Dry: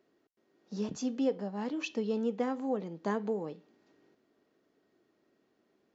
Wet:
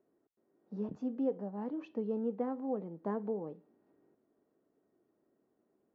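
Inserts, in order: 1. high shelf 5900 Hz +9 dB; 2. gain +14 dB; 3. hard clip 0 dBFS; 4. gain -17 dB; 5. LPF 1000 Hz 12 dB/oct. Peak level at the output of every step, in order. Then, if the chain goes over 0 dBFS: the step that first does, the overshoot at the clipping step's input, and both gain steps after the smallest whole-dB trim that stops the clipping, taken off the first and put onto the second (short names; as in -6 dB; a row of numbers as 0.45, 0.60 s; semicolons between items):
-19.0, -5.0, -5.0, -22.0, -22.5 dBFS; no overload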